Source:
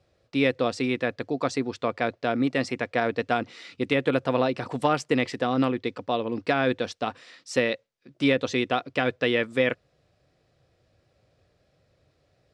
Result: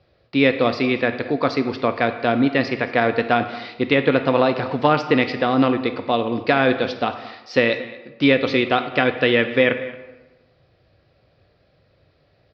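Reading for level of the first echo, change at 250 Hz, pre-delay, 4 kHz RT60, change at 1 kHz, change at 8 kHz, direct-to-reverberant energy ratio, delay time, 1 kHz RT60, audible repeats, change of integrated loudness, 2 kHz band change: −19.0 dB, +6.5 dB, 17 ms, 0.70 s, +7.0 dB, can't be measured, 8.5 dB, 224 ms, 1.1 s, 1, +6.5 dB, +7.5 dB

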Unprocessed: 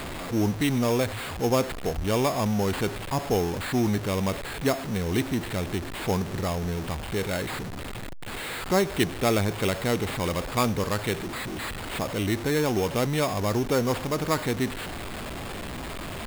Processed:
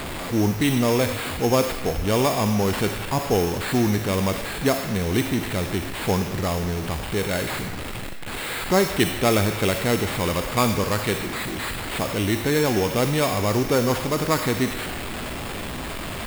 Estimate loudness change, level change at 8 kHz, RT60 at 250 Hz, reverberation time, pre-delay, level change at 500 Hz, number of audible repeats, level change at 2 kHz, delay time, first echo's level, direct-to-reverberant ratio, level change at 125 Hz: +4.0 dB, +5.5 dB, 3.5 s, 1.9 s, 36 ms, +4.0 dB, no echo audible, +5.0 dB, no echo audible, no echo audible, 5.5 dB, +3.5 dB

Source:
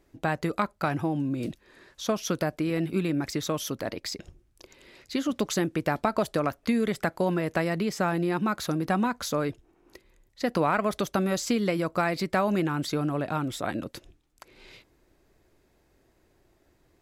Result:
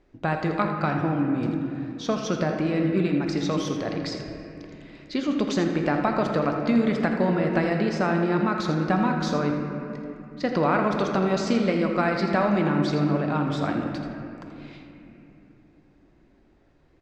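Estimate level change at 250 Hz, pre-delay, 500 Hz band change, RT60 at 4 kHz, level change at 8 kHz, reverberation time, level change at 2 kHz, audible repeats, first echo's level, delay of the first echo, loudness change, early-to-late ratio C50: +5.0 dB, 3 ms, +3.5 dB, 1.8 s, −5.5 dB, 2.9 s, +2.5 dB, 1, −10.5 dB, 82 ms, +3.5 dB, 3.0 dB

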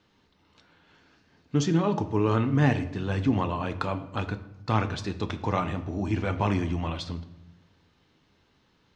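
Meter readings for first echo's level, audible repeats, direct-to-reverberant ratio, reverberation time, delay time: no echo audible, no echo audible, 9.0 dB, 0.95 s, no echo audible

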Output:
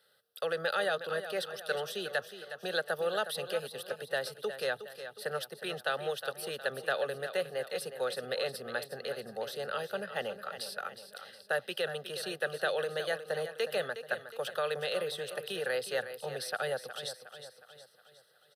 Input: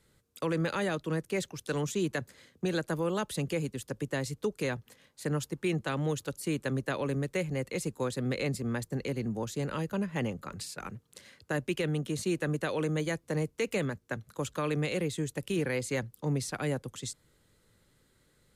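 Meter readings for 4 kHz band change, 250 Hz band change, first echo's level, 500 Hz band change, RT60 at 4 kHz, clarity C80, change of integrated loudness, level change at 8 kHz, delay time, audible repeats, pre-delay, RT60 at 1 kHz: +4.5 dB, −16.5 dB, −11.0 dB, 0.0 dB, no reverb audible, no reverb audible, −2.0 dB, −5.0 dB, 363 ms, 4, no reverb audible, no reverb audible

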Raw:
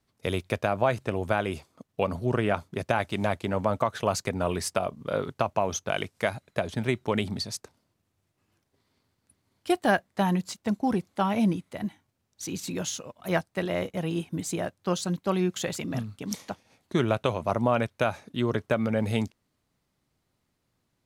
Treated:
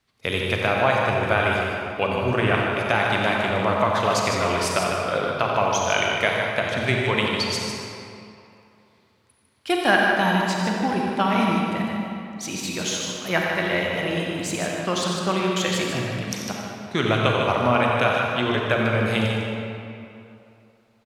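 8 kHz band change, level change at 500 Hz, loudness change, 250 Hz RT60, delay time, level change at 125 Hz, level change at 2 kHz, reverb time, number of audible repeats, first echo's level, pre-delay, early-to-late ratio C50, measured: +5.5 dB, +5.0 dB, +6.5 dB, 2.6 s, 90 ms, +4.5 dB, +11.5 dB, 2.8 s, 2, −9.0 dB, 34 ms, −1.5 dB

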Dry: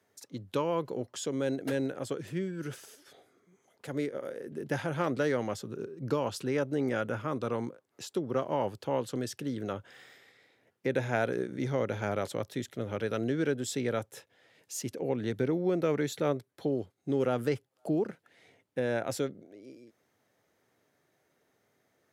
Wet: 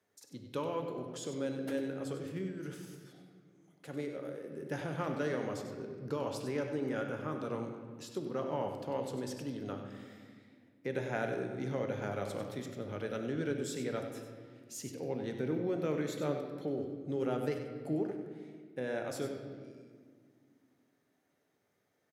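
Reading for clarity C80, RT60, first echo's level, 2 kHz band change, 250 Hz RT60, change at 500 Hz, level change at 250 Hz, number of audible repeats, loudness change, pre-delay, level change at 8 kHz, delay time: 5.5 dB, 1.9 s, −9.5 dB, −5.5 dB, 3.2 s, −5.0 dB, −4.5 dB, 1, −5.0 dB, 4 ms, −6.0 dB, 96 ms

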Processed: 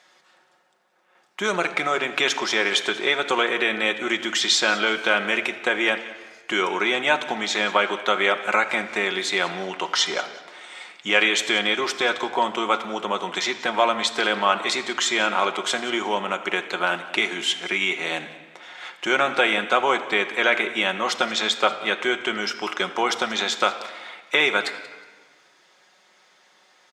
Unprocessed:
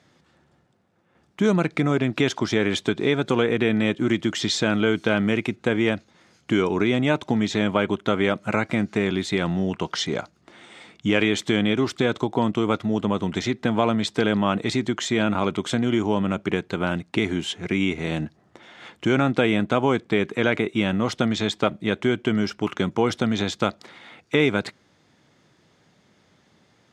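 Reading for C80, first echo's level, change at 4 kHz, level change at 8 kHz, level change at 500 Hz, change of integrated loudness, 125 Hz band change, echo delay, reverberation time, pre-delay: 12.0 dB, −19.0 dB, +6.5 dB, +6.5 dB, −2.0 dB, +1.0 dB, −18.0 dB, 183 ms, 1.3 s, 5 ms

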